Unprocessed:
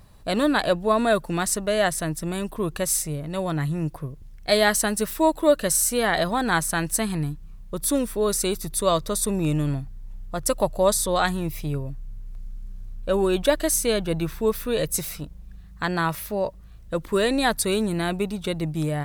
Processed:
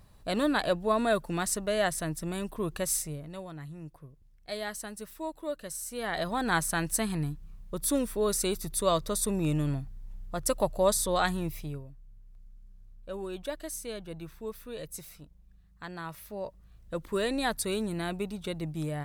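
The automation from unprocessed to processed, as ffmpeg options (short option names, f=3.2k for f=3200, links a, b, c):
-af "volume=14dB,afade=t=out:st=2.94:d=0.55:silence=0.281838,afade=t=in:st=5.86:d=0.67:silence=0.251189,afade=t=out:st=11.43:d=0.45:silence=0.281838,afade=t=in:st=16.03:d=0.94:silence=0.398107"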